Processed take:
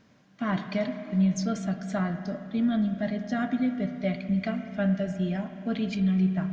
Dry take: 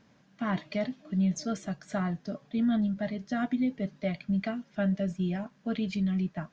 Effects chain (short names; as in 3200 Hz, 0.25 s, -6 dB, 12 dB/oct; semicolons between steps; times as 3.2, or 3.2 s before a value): notch 860 Hz, Q 16; spring tank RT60 2.5 s, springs 32/52 ms, chirp 75 ms, DRR 7.5 dB; gain +2 dB